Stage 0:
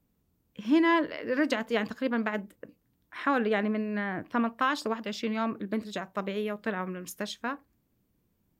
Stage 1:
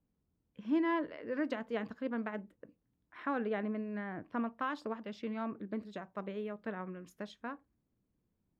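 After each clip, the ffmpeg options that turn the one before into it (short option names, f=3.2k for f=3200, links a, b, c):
-af "lowpass=f=1.5k:p=1,volume=-7.5dB"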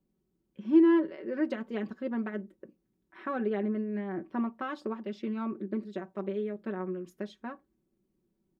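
-af "equalizer=f=330:t=o:w=0.84:g=12,aecho=1:1:5.3:0.73,volume=-2dB"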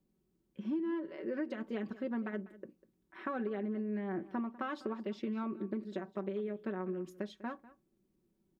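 -af "acompressor=threshold=-33dB:ratio=12,aecho=1:1:197:0.119"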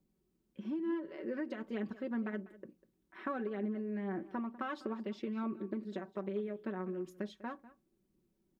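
-af "aphaser=in_gain=1:out_gain=1:delay=4.9:decay=0.25:speed=1.1:type=triangular,volume=-1dB"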